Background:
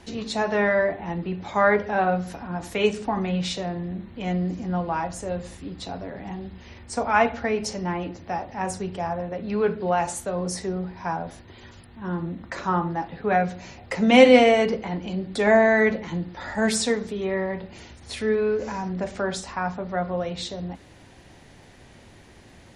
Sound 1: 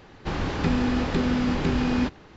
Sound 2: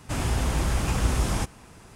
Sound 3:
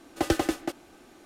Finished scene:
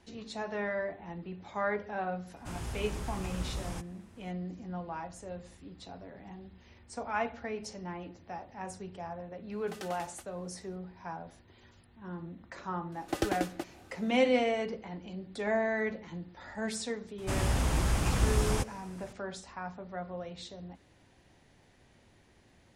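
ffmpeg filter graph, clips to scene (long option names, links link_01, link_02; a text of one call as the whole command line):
ffmpeg -i bed.wav -i cue0.wav -i cue1.wav -i cue2.wav -filter_complex "[2:a]asplit=2[link_01][link_02];[3:a]asplit=2[link_03][link_04];[0:a]volume=-13dB[link_05];[link_03]highpass=840[link_06];[link_04]acompressor=mode=upward:threshold=-44dB:ratio=2.5:attack=3.2:release=140:knee=2.83:detection=peak[link_07];[link_01]atrim=end=1.95,asetpts=PTS-STARTPTS,volume=-13.5dB,afade=type=in:duration=0.004:curve=hsin,afade=type=out:start_time=1.946:duration=0.004:curve=hsin,adelay=2360[link_08];[link_06]atrim=end=1.25,asetpts=PTS-STARTPTS,volume=-13.5dB,afade=type=in:duration=0.004:curve=hsin,afade=type=out:start_time=1.246:duration=0.004:curve=hsin,adelay=9510[link_09];[link_07]atrim=end=1.25,asetpts=PTS-STARTPTS,volume=-6.5dB,afade=type=in:duration=0.004:curve=hsin,afade=type=out:start_time=1.246:duration=0.004:curve=hsin,adelay=12920[link_10];[link_02]atrim=end=1.95,asetpts=PTS-STARTPTS,volume=-3.5dB,afade=type=in:duration=0.004:curve=hsin,afade=type=out:start_time=1.946:duration=0.004:curve=hsin,adelay=17180[link_11];[link_05][link_08][link_09][link_10][link_11]amix=inputs=5:normalize=0" out.wav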